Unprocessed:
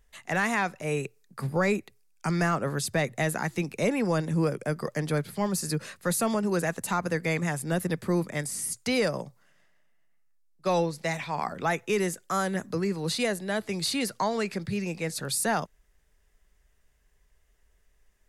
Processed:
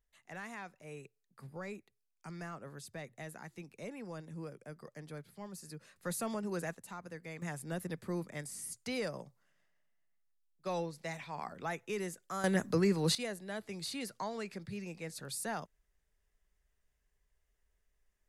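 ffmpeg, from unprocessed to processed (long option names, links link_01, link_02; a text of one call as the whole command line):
ffmpeg -i in.wav -af "asetnsamples=nb_out_samples=441:pad=0,asendcmd='5.96 volume volume -11dB;6.75 volume volume -18.5dB;7.42 volume volume -11.5dB;12.44 volume volume -0.5dB;13.15 volume volume -12dB',volume=-19dB" out.wav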